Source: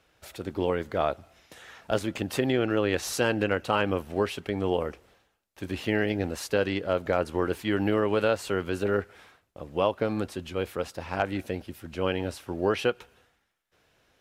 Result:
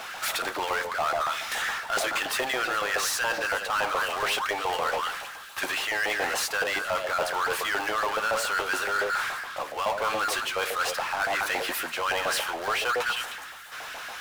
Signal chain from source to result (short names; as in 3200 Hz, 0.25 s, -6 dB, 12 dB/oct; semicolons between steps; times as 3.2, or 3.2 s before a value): notch 970 Hz, Q 28; in parallel at -10 dB: Schmitt trigger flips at -22 dBFS; on the sum: delay with a stepping band-pass 0.104 s, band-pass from 520 Hz, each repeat 1.4 oct, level -7.5 dB; LFO high-pass saw up 7.1 Hz 750–1600 Hz; reverse; compressor, threshold -39 dBFS, peak gain reduction 20 dB; reverse; power-law curve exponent 0.5; gain +8.5 dB